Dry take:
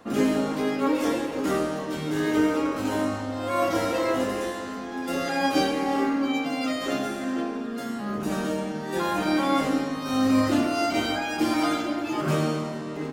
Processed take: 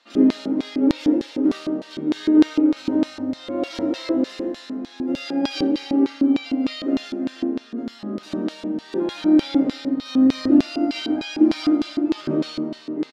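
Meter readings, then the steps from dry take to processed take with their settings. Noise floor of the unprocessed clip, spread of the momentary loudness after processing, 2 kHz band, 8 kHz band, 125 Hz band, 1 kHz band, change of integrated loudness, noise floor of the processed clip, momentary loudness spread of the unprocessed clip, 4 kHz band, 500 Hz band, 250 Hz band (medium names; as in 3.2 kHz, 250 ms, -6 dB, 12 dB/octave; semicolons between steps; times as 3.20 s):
-33 dBFS, 11 LU, -6.0 dB, no reading, -5.0 dB, -9.5 dB, +4.0 dB, -45 dBFS, 7 LU, +1.0 dB, -0.5 dB, +6.5 dB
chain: treble shelf 5.8 kHz -9 dB; band-stop 1.1 kHz, Q 19; comb 3.3 ms, depth 32%; feedback echo behind a high-pass 85 ms, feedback 72%, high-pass 3.7 kHz, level -6 dB; LFO band-pass square 3.3 Hz 300–4100 Hz; trim +8.5 dB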